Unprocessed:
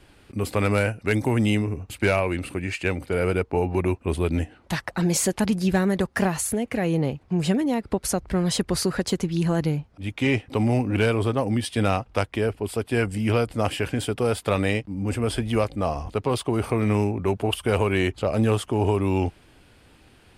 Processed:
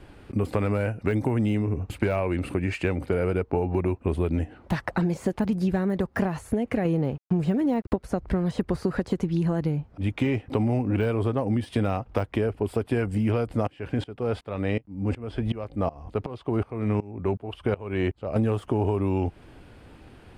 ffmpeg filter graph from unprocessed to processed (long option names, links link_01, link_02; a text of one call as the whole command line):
ffmpeg -i in.wav -filter_complex "[0:a]asettb=1/sr,asplit=3[link_01][link_02][link_03];[link_01]atrim=end=6.854[link_04];[link_02]atrim=start=6.85:end=7.96,asetpts=PTS-STARTPTS,afade=type=in:duration=0.004:curve=qsin,afade=type=out:start_time=1.106:duration=0.004:curve=qsin,acontrast=24,aeval=exprs='sgn(val(0))*max(abs(val(0))-0.00708,0)':channel_layout=same[link_05];[link_03]atrim=start=7.956[link_06];[link_04][link_05]acrossfade=duration=0.004:curve1=hsin:curve2=qsin[link_07];[link_07][link_06]acrossfade=duration=0.004:curve1=qsin:curve2=hsin,asettb=1/sr,asplit=3[link_08][link_09][link_10];[link_08]atrim=end=13.674[link_11];[link_09]atrim=start=13.67:end=18.36,asetpts=PTS-STARTPTS,afade=type=in:duration=0.004:curve=qsin,afade=type=out:start_time=4.686:duration=0.004:curve=qsin,acrossover=split=5400[link_12][link_13];[link_13]acompressor=threshold=-55dB:ratio=4:attack=1:release=60[link_14];[link_12][link_14]amix=inputs=2:normalize=0,aeval=exprs='val(0)*pow(10,-23*if(lt(mod(-2.7*n/s,1),2*abs(-2.7)/1000),1-mod(-2.7*n/s,1)/(2*abs(-2.7)/1000),(mod(-2.7*n/s,1)-2*abs(-2.7)/1000)/(1-2*abs(-2.7)/1000))/20)':channel_layout=same[link_15];[link_10]atrim=start=18.356[link_16];[link_11][link_15]acrossfade=duration=0.004:curve1=hsin:curve2=qsin[link_17];[link_17][link_16]acrossfade=duration=0.004:curve1=qsin:curve2=hsin,deesser=0.75,highshelf=frequency=2200:gain=-12,acompressor=threshold=-28dB:ratio=6,volume=6.5dB" out.wav